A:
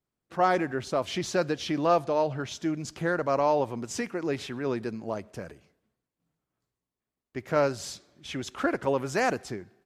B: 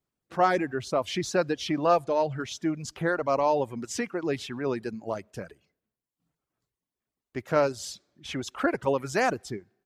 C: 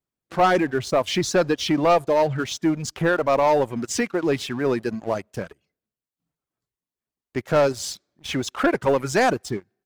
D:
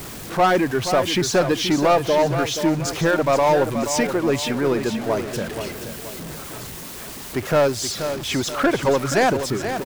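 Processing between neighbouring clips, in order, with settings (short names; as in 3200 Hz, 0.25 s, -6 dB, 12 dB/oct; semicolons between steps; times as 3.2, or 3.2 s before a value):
reverb removal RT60 0.82 s; gain +1.5 dB
sample leveller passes 2
zero-crossing step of -27 dBFS; feedback echo 0.478 s, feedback 43%, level -9 dB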